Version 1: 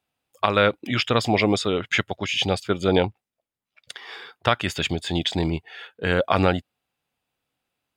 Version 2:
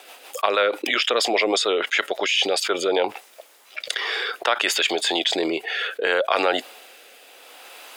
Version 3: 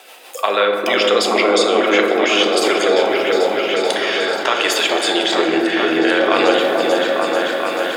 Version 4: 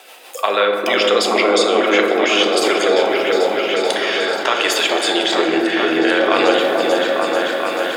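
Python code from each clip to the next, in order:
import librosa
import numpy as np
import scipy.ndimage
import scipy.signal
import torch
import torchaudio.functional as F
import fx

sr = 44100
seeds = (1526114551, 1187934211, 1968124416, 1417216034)

y1 = scipy.signal.sosfilt(scipy.signal.butter(4, 420.0, 'highpass', fs=sr, output='sos'), x)
y1 = fx.rotary_switch(y1, sr, hz=6.3, then_hz=0.65, switch_at_s=2.08)
y1 = fx.env_flatten(y1, sr, amount_pct=70)
y2 = fx.echo_opening(y1, sr, ms=439, hz=750, octaves=1, feedback_pct=70, wet_db=0)
y2 = fx.rev_fdn(y2, sr, rt60_s=2.2, lf_ratio=1.55, hf_ratio=0.35, size_ms=27.0, drr_db=2.0)
y2 = F.gain(torch.from_numpy(y2), 2.0).numpy()
y3 = fx.low_shelf(y2, sr, hz=62.0, db=-8.5)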